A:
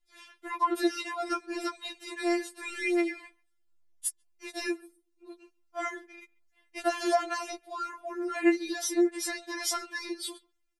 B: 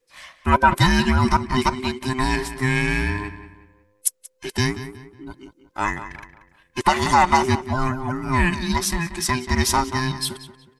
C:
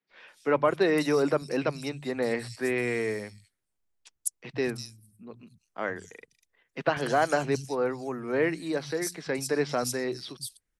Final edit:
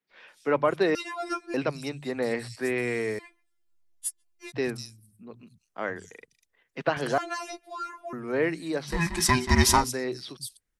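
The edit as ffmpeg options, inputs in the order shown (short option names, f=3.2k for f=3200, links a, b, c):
-filter_complex "[0:a]asplit=3[a][b][c];[2:a]asplit=5[d][e][f][g][h];[d]atrim=end=0.952[i];[a]atrim=start=0.948:end=1.542[j];[e]atrim=start=1.538:end=3.192[k];[b]atrim=start=3.188:end=4.522[l];[f]atrim=start=4.518:end=7.182[m];[c]atrim=start=7.178:end=8.132[n];[g]atrim=start=8.128:end=9.03[o];[1:a]atrim=start=8.87:end=9.91[p];[h]atrim=start=9.75[q];[i][j]acrossfade=d=0.004:c1=hsin:c2=hsin[r];[r][k]acrossfade=d=0.004:c1=hsin:c2=hsin[s];[s][l]acrossfade=d=0.004:c1=hsin:c2=hsin[t];[t][m]acrossfade=d=0.004:c1=hsin:c2=hsin[u];[u][n]acrossfade=d=0.004:c1=hsin:c2=hsin[v];[v][o]acrossfade=d=0.004:c1=hsin:c2=hsin[w];[w][p]acrossfade=d=0.16:c1=tri:c2=tri[x];[x][q]acrossfade=d=0.16:c1=tri:c2=tri"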